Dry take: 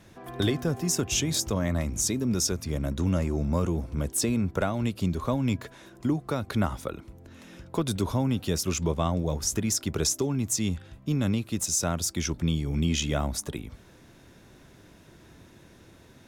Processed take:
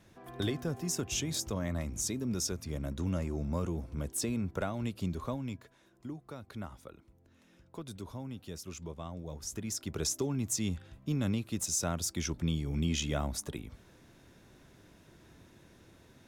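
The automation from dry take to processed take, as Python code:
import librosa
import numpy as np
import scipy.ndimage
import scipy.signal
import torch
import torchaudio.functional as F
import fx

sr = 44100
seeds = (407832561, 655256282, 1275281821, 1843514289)

y = fx.gain(x, sr, db=fx.line((5.23, -7.5), (5.65, -16.0), (9.09, -16.0), (10.23, -5.5)))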